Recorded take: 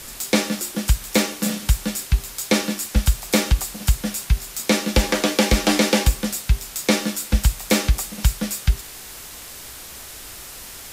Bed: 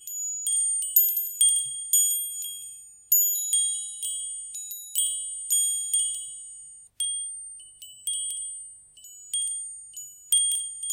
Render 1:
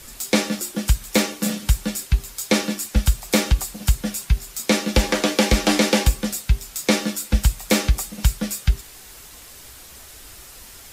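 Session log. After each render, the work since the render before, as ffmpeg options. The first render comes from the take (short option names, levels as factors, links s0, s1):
-af "afftdn=nr=6:nf=-38"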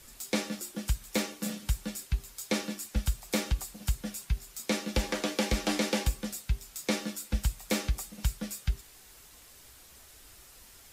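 -af "volume=0.266"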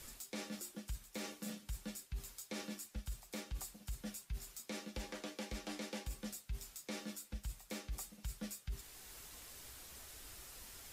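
-af "areverse,acompressor=threshold=0.0126:ratio=5,areverse,alimiter=level_in=3.16:limit=0.0631:level=0:latency=1:release=455,volume=0.316"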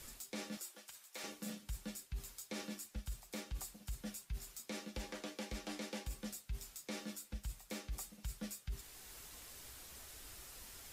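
-filter_complex "[0:a]asettb=1/sr,asplit=3[s0][s1][s2];[s0]atrim=end=0.574[s3];[s1]atrim=start=0.57:end=1.24,asetpts=PTS-STARTPTS,afade=t=in:d=0.004:c=qsin,afade=t=out:st=0.666:d=0.004:c=qsin,highpass=630[s4];[s2]atrim=start=1.236[s5];[s3][s4]acrossfade=d=0.004:c1=hsin:c2=qsin[s6];[s6][s5]acrossfade=d=0.004:c1=qsin:c2=hsin"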